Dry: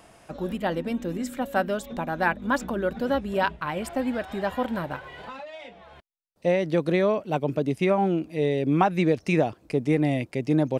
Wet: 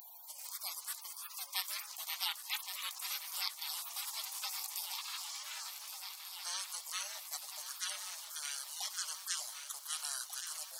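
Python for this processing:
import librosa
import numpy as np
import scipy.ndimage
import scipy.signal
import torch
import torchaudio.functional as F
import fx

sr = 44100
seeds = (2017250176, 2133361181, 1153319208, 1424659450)

y = scipy.signal.sosfilt(scipy.signal.butter(8, 1400.0, 'highpass', fs=sr, output='sos'), x)
y = fx.spec_gate(y, sr, threshold_db=-30, keep='weak')
y = fx.echo_swing(y, sr, ms=1492, ratio=3, feedback_pct=59, wet_db=-16)
y = fx.env_flatten(y, sr, amount_pct=50)
y = F.gain(torch.from_numpy(y), 14.5).numpy()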